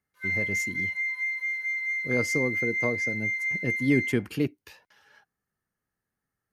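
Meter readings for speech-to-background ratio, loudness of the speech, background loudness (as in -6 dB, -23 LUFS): -3.0 dB, -30.5 LUFS, -27.5 LUFS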